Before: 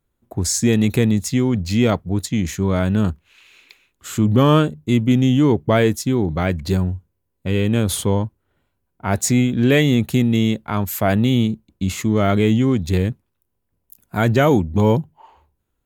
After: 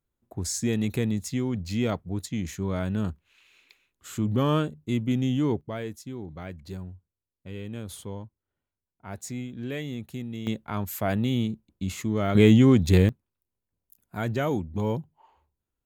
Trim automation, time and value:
-10 dB
from 5.61 s -18.5 dB
from 10.47 s -9 dB
from 12.35 s 0 dB
from 13.09 s -12 dB

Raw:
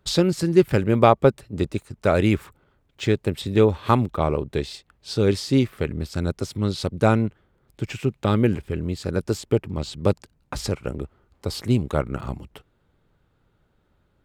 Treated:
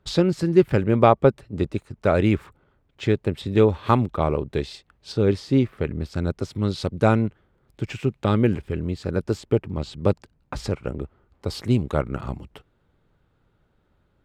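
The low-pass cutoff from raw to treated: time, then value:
low-pass 6 dB/octave
2.9 kHz
from 3.52 s 4.8 kHz
from 5.12 s 1.8 kHz
from 5.84 s 3 kHz
from 6.55 s 5.1 kHz
from 8.91 s 3 kHz
from 11.47 s 5.5 kHz

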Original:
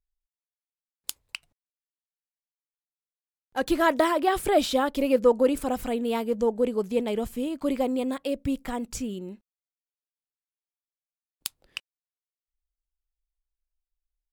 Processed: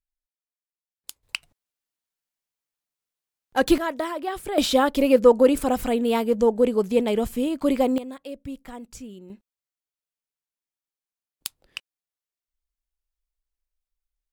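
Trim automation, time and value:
-6 dB
from 1.23 s +6.5 dB
from 3.78 s -6 dB
from 4.58 s +5 dB
from 7.98 s -7.5 dB
from 9.30 s +0.5 dB

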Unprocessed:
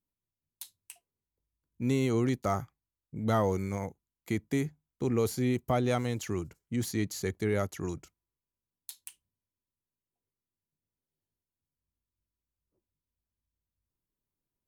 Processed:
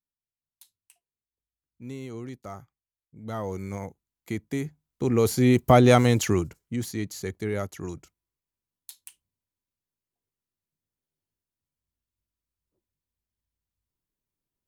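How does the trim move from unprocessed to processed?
3.15 s -10 dB
3.71 s 0 dB
4.60 s 0 dB
5.73 s +12 dB
6.23 s +12 dB
6.87 s 0 dB

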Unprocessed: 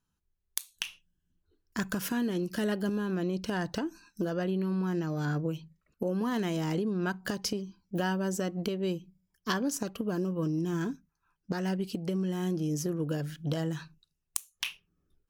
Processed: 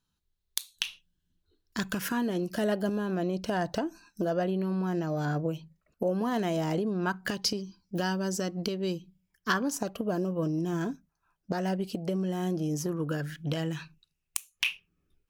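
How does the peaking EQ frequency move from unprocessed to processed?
peaking EQ +9.5 dB 0.59 oct
1.86 s 3.9 kHz
2.28 s 660 Hz
6.97 s 660 Hz
7.50 s 5 kHz
8.94 s 5 kHz
9.88 s 650 Hz
12.61 s 650 Hz
13.55 s 2.5 kHz

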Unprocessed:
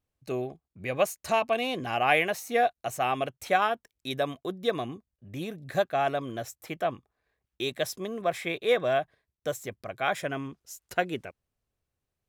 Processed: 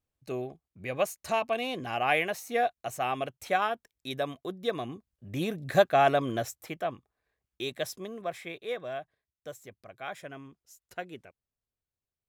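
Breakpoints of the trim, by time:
4.78 s -3 dB
5.45 s +4.5 dB
6.37 s +4.5 dB
6.81 s -3.5 dB
7.88 s -3.5 dB
8.78 s -11 dB

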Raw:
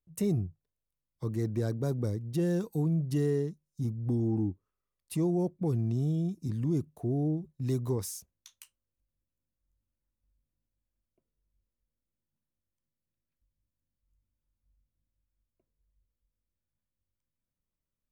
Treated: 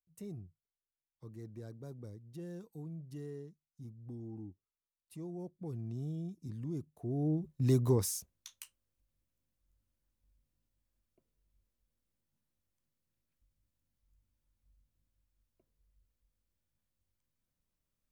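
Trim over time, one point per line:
5.13 s -16.5 dB
6.02 s -10 dB
6.94 s -10 dB
7.51 s +2.5 dB

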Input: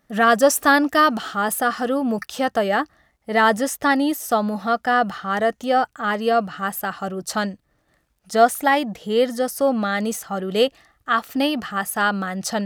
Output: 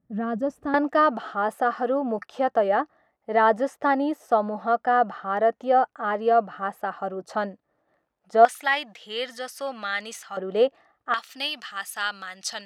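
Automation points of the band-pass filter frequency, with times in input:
band-pass filter, Q 0.9
120 Hz
from 0.74 s 640 Hz
from 8.45 s 2.6 kHz
from 10.37 s 680 Hz
from 11.14 s 3.8 kHz

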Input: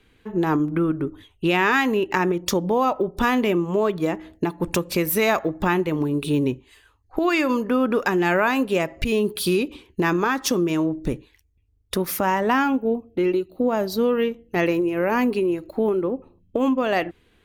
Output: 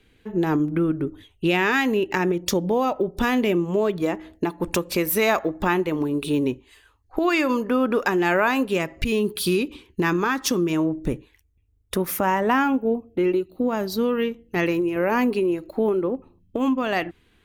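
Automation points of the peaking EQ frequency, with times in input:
peaking EQ -5.5 dB 0.76 oct
1.1 kHz
from 4.02 s 140 Hz
from 8.68 s 640 Hz
from 10.73 s 4.6 kHz
from 13.46 s 610 Hz
from 14.96 s 91 Hz
from 16.15 s 530 Hz

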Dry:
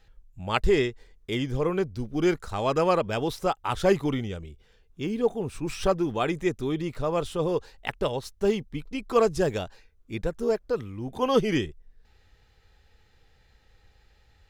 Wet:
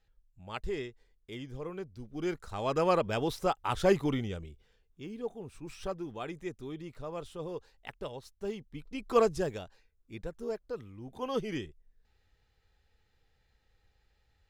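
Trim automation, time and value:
1.91 s -14 dB
2.94 s -3.5 dB
4.40 s -3.5 dB
5.05 s -13 dB
8.58 s -13 dB
9.18 s -3 dB
9.61 s -11 dB

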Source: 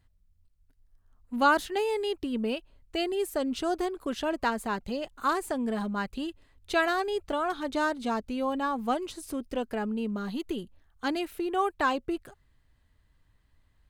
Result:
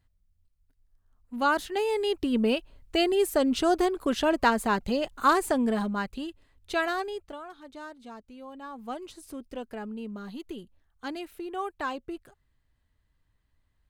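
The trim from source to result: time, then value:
1.35 s -3.5 dB
2.35 s +5.5 dB
5.56 s +5.5 dB
6.27 s -2 dB
7.01 s -2 dB
7.49 s -14.5 dB
8.49 s -14.5 dB
9.05 s -6 dB

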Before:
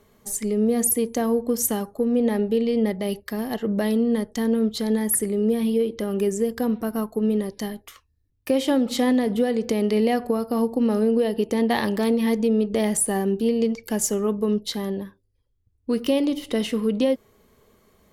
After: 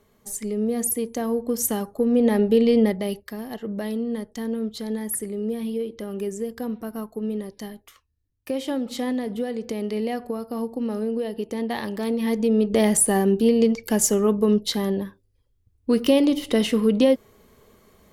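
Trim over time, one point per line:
1.18 s -3.5 dB
2.72 s +5 dB
3.39 s -6 dB
11.91 s -6 dB
12.79 s +3.5 dB

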